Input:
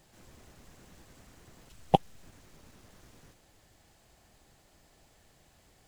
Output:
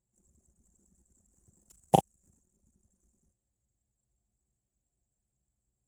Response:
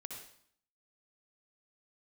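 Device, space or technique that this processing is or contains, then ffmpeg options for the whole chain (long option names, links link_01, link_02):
budget condenser microphone: -filter_complex "[0:a]asettb=1/sr,asplit=3[link_01][link_02][link_03];[link_01]atrim=end=1.284[link_04];[link_02]atrim=start=1.28:end=2.41,asetpts=PTS-STARTPTS,afade=type=in:duration=0.004:curve=qsin,afade=type=out:start_time=1.126:duration=0.004:curve=qsin,asplit=2[link_05][link_06];[link_06]adelay=38,volume=-5.5dB[link_07];[link_05][link_07]amix=inputs=2:normalize=0,atrim=end_sample=49833[link_08];[link_03]atrim=start=2.406[link_09];[link_04][link_08]acrossfade=duration=0.004:curve1=hsin:curve2=qsin[link_10];[link_10][link_09]acrossfade=duration=0.004:curve1=qsin:curve2=hsin,highpass=frequency=61:width=0.5412,highpass=frequency=61:width=1.3066,highshelf=frequency=5300:width_type=q:width=1.5:gain=13,anlmdn=0.0398"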